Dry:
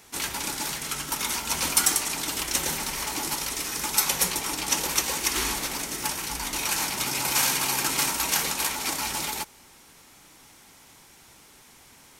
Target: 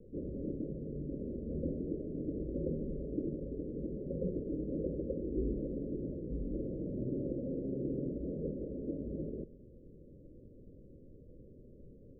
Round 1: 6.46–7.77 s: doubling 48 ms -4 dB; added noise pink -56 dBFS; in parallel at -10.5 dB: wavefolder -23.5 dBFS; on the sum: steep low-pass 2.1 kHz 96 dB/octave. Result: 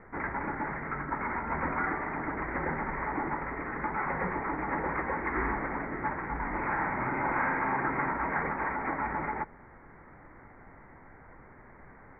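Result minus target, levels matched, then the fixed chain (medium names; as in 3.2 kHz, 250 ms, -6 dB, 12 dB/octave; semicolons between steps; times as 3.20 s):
500 Hz band -5.5 dB
6.46–7.77 s: doubling 48 ms -4 dB; added noise pink -56 dBFS; in parallel at -10.5 dB: wavefolder -23.5 dBFS; on the sum: steep low-pass 560 Hz 96 dB/octave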